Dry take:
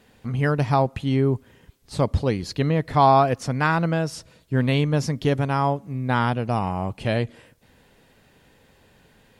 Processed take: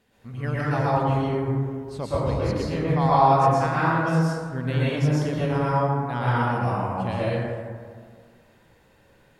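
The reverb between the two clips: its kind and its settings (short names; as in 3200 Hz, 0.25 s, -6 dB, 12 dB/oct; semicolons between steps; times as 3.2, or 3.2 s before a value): plate-style reverb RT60 1.9 s, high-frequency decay 0.35×, pre-delay 0.105 s, DRR -9 dB; gain -10.5 dB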